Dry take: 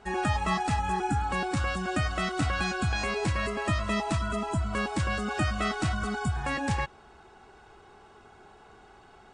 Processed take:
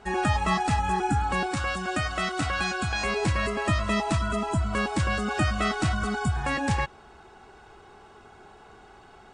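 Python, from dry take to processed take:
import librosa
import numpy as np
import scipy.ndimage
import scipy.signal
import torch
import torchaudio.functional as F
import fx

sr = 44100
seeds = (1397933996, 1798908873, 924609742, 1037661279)

y = fx.low_shelf(x, sr, hz=360.0, db=-6.0, at=(1.46, 3.05))
y = y * 10.0 ** (3.0 / 20.0)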